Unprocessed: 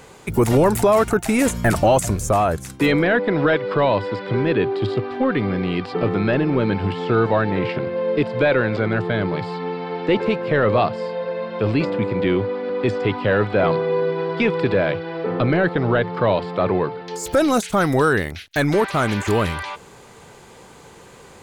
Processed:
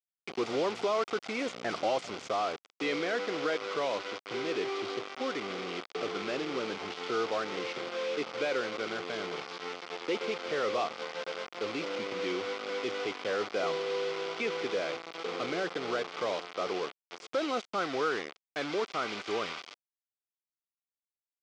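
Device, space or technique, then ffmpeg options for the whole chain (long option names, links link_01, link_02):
hand-held game console: -af "acrusher=bits=3:mix=0:aa=0.000001,highpass=490,equalizer=frequency=610:width_type=q:width=4:gain=-6,equalizer=frequency=920:width_type=q:width=4:gain=-9,equalizer=frequency=1700:width_type=q:width=4:gain=-10,equalizer=frequency=2700:width_type=q:width=4:gain=-4,equalizer=frequency=4000:width_type=q:width=4:gain=-5,lowpass=frequency=4600:width=0.5412,lowpass=frequency=4600:width=1.3066,volume=-7.5dB"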